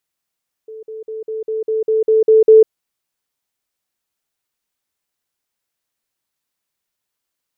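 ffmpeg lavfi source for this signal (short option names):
-f lavfi -i "aevalsrc='pow(10,(-30+3*floor(t/0.2))/20)*sin(2*PI*439*t)*clip(min(mod(t,0.2),0.15-mod(t,0.2))/0.005,0,1)':d=2:s=44100"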